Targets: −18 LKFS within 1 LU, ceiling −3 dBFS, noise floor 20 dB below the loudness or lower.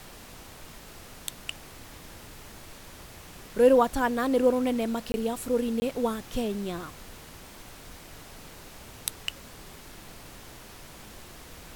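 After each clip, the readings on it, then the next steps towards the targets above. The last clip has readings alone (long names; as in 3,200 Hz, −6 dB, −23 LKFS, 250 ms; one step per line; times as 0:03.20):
number of dropouts 2; longest dropout 20 ms; background noise floor −47 dBFS; target noise floor −48 dBFS; integrated loudness −27.5 LKFS; sample peak −8.5 dBFS; target loudness −18.0 LKFS
→ repair the gap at 0:05.12/0:05.80, 20 ms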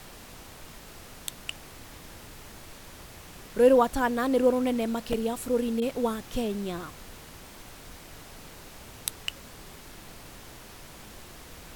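number of dropouts 0; background noise floor −47 dBFS; target noise floor −48 dBFS
→ noise reduction from a noise print 6 dB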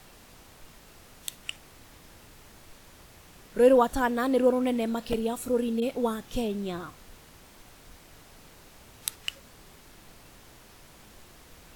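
background noise floor −53 dBFS; integrated loudness −27.5 LKFS; sample peak −8.5 dBFS; target loudness −18.0 LKFS
→ level +9.5 dB
brickwall limiter −3 dBFS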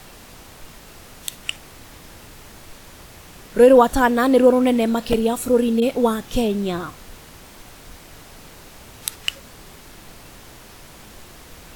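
integrated loudness −18.5 LKFS; sample peak −3.0 dBFS; background noise floor −44 dBFS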